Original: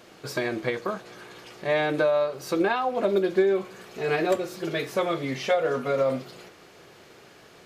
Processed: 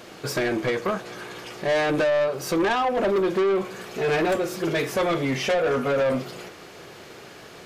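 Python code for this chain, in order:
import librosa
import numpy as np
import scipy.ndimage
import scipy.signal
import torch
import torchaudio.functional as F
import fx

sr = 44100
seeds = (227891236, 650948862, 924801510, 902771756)

y = fx.dynamic_eq(x, sr, hz=4100.0, q=4.1, threshold_db=-56.0, ratio=4.0, max_db=-5)
y = 10.0 ** (-26.0 / 20.0) * np.tanh(y / 10.0 ** (-26.0 / 20.0))
y = F.gain(torch.from_numpy(y), 7.5).numpy()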